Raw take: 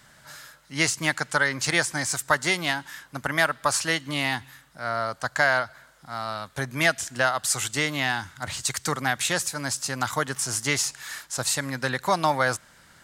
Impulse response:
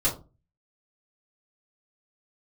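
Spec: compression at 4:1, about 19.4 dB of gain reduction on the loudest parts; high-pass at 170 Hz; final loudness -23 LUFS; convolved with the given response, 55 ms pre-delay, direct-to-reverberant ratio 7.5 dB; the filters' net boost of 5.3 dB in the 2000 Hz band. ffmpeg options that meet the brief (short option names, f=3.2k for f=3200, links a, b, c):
-filter_complex "[0:a]highpass=170,equalizer=f=2k:t=o:g=6.5,acompressor=threshold=-37dB:ratio=4,asplit=2[a][b];[1:a]atrim=start_sample=2205,adelay=55[c];[b][c]afir=irnorm=-1:irlink=0,volume=-17.5dB[d];[a][d]amix=inputs=2:normalize=0,volume=14dB"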